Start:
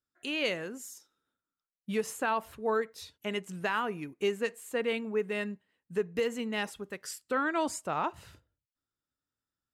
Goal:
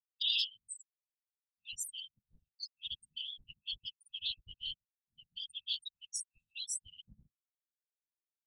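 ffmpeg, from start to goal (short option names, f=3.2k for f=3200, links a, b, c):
-filter_complex "[0:a]acrossover=split=210[a][b];[a]aeval=exprs='(mod(141*val(0)+1,2)-1)/141':c=same[c];[c][b]amix=inputs=2:normalize=0,acontrast=53,afftfilt=real='re*gte(hypot(re,im),0.0398)':imag='im*gte(hypot(re,im),0.0398)':win_size=1024:overlap=0.75,deesser=0.75,equalizer=f=3.3k:w=5.1:g=14,afftfilt=real='re*(1-between(b*sr/4096,110,2300))':imag='im*(1-between(b*sr/4096,110,2300))':win_size=4096:overlap=0.75,asetrate=50715,aresample=44100,afftfilt=real='hypot(re,im)*cos(2*PI*random(0))':imag='hypot(re,im)*sin(2*PI*random(1))':win_size=512:overlap=0.75,highshelf=f=4.2k:t=q:w=1.5:g=7.5"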